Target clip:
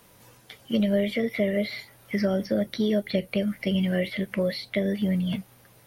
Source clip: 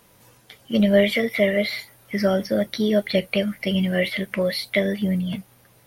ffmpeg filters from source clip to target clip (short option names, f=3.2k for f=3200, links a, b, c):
-filter_complex "[0:a]acrossover=split=520|5900[a][b][c];[a]acompressor=threshold=-22dB:ratio=4[d];[b]acompressor=threshold=-33dB:ratio=4[e];[c]acompressor=threshold=-55dB:ratio=4[f];[d][e][f]amix=inputs=3:normalize=0"